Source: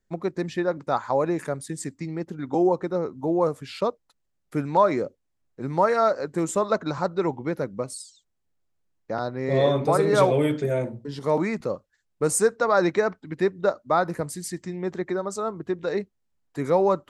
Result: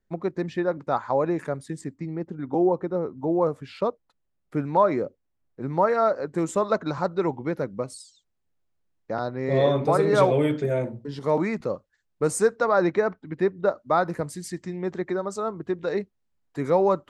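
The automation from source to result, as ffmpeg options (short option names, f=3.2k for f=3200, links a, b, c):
-af "asetnsamples=n=441:p=0,asendcmd='1.81 lowpass f 1200;3.18 lowpass f 2000;6.33 lowpass f 4700;12.69 lowpass f 2100;13.78 lowpass f 5300',lowpass=f=2.7k:p=1"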